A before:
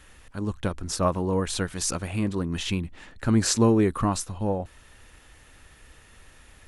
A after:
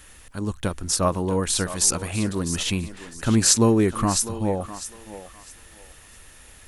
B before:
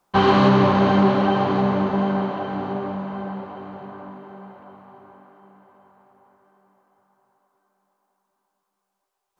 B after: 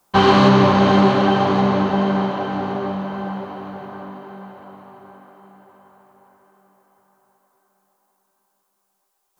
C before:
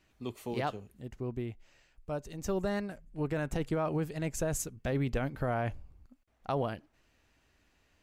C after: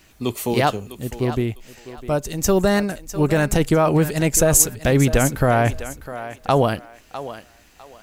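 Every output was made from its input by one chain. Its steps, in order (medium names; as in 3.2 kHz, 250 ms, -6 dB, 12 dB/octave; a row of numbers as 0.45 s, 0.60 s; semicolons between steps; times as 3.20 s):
treble shelf 5.8 kHz +11.5 dB; thinning echo 653 ms, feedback 26%, high-pass 360 Hz, level -12 dB; peak normalisation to -1.5 dBFS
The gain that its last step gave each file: +1.5 dB, +3.0 dB, +15.0 dB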